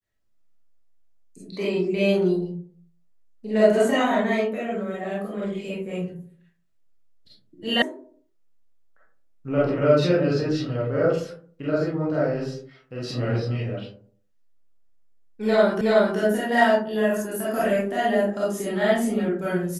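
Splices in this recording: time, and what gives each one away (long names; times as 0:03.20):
0:07.82: cut off before it has died away
0:15.81: the same again, the last 0.37 s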